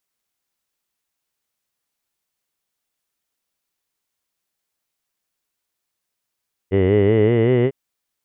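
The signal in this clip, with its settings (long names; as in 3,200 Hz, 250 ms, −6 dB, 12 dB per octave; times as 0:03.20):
vowel from formants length 1.00 s, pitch 92.2 Hz, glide +6 semitones, F1 420 Hz, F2 2,000 Hz, F3 2,900 Hz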